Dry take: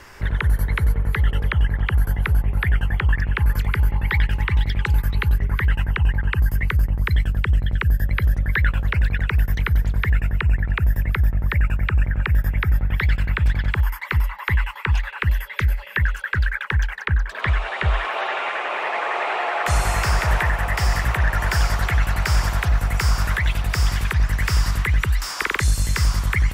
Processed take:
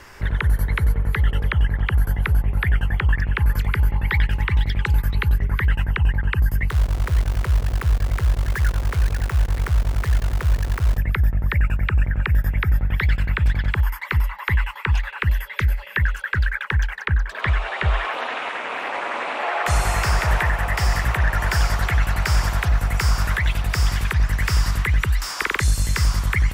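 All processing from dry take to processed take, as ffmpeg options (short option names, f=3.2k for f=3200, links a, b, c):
-filter_complex "[0:a]asettb=1/sr,asplit=3[a][b][c];[a]atrim=end=6.704[d];[b]atrim=start=6.7:end=10.98,asetpts=PTS-STARTPTS,afade=t=in:d=0.004:c=qsin,afade=t=out:st=4.276:d=0.004:c=qsin,lowpass=1.2k,equalizer=f=230:w=1.8:g=-10,acrusher=bits=6:dc=4:mix=0:aa=0.000001[e];[c]atrim=start=10.976[f];[d][e]acrossfade=d=0.004:c1=hsin:c2=qsin[g];[g][f]acrossfade=d=0.004:c1=qsin:c2=hsin,asettb=1/sr,asplit=3[h][i][j];[h]atrim=end=18.144[k];[i]atrim=start=18.14:end=19.43,asetpts=PTS-STARTPTS,afade=t=in:d=0.004:c=qsin,afade=t=out:st=1.286:d=0.004:c=qsin,highshelf=f=6.5k:g=7.5,aeval=exprs='val(0)*sin(2*PI*130*n/s)':c=same[l];[j]atrim=start=19.426[m];[k][l]acrossfade=d=0.004:c1=hsin:c2=qsin[n];[n][m]acrossfade=d=0.004:c1=qsin:c2=hsin"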